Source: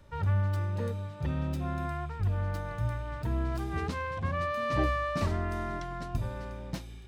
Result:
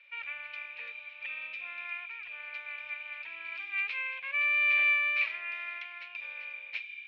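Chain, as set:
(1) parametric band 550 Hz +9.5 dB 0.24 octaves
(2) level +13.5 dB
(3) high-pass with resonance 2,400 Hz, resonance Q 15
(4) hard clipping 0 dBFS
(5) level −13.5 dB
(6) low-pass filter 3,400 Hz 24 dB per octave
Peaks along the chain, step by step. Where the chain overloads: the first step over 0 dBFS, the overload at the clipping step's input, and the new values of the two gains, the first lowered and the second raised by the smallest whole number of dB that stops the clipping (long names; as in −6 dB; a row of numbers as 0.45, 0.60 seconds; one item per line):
−14.0, −0.5, −4.0, −4.0, −17.5, −18.0 dBFS
no step passes full scale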